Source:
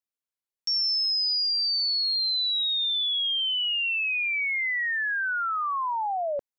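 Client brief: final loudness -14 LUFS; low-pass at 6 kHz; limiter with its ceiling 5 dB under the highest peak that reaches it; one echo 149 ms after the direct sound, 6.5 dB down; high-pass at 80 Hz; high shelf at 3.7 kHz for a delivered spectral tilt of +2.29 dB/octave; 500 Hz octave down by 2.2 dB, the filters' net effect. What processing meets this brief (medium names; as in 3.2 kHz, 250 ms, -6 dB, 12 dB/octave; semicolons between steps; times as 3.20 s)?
high-pass 80 Hz; low-pass 6 kHz; peaking EQ 500 Hz -3.5 dB; treble shelf 3.7 kHz +8.5 dB; peak limiter -23.5 dBFS; delay 149 ms -6.5 dB; trim +9.5 dB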